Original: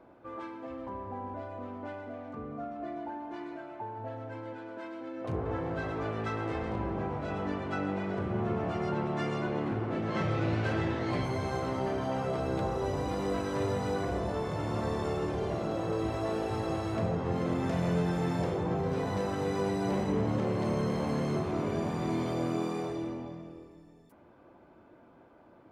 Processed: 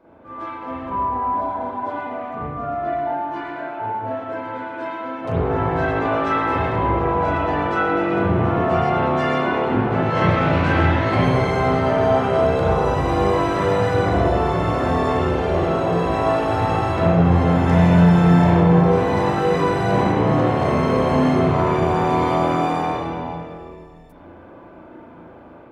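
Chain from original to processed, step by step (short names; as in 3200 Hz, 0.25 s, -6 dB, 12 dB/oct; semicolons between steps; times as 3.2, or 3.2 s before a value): AGC gain up to 6.5 dB; spectral repair 1.39–1.89, 690–3100 Hz before; spring tank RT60 1 s, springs 35/47 ms, chirp 55 ms, DRR -8 dB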